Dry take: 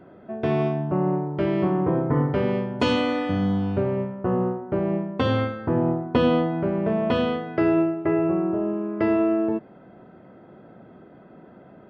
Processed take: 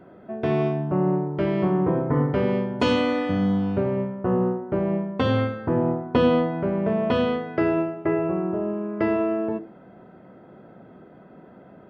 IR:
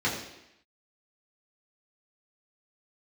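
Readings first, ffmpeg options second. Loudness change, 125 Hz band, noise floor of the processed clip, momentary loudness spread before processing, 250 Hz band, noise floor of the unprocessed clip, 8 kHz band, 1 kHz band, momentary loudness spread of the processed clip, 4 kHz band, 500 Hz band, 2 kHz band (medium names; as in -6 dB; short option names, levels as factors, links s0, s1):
0.0 dB, 0.0 dB, -48 dBFS, 5 LU, -0.5 dB, -49 dBFS, no reading, 0.0 dB, 4 LU, -0.5 dB, +0.5 dB, +0.5 dB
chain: -filter_complex "[0:a]asplit=2[s0][s1];[1:a]atrim=start_sample=2205,atrim=end_sample=6174[s2];[s1][s2]afir=irnorm=-1:irlink=0,volume=0.0422[s3];[s0][s3]amix=inputs=2:normalize=0"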